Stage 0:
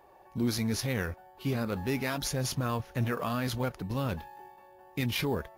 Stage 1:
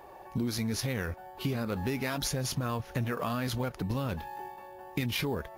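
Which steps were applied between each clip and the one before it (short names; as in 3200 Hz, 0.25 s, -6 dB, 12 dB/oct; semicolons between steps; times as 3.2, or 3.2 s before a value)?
compressor 6:1, threshold -37 dBFS, peak gain reduction 12 dB; gain +8 dB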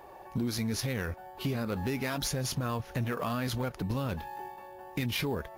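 overloaded stage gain 24.5 dB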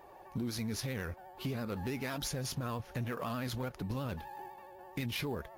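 vibrato 12 Hz 57 cents; gain -5 dB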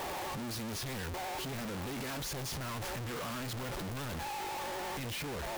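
infinite clipping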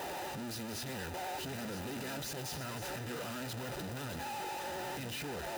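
reverse delay 0.637 s, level -10 dB; notch comb 1100 Hz; gain -1 dB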